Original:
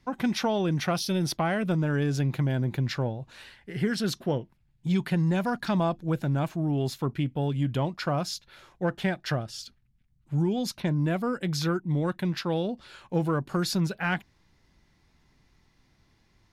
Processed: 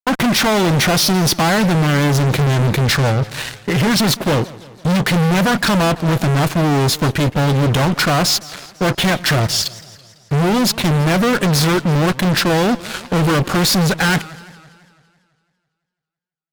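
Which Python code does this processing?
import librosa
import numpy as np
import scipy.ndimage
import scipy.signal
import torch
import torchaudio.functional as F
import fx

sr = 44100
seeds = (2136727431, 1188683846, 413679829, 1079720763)

y = fx.fuzz(x, sr, gain_db=41.0, gate_db=-49.0)
y = fx.echo_warbled(y, sr, ms=167, feedback_pct=57, rate_hz=2.8, cents=204, wet_db=-19.5)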